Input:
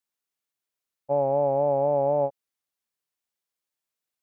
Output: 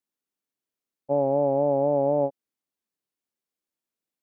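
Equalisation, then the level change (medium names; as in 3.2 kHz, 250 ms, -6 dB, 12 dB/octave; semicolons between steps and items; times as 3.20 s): peaking EQ 270 Hz +12 dB 1.7 oct; -4.5 dB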